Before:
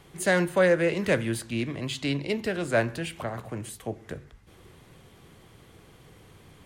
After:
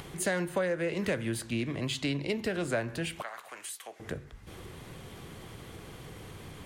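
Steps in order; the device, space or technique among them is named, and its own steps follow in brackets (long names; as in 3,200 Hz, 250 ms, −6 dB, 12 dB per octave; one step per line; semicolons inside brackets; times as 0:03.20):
0:03.22–0:04.00: high-pass filter 1,200 Hz 12 dB per octave
upward and downward compression (upward compression, threshold −37 dBFS; downward compressor 6 to 1, threshold −27 dBFS, peak gain reduction 10.5 dB)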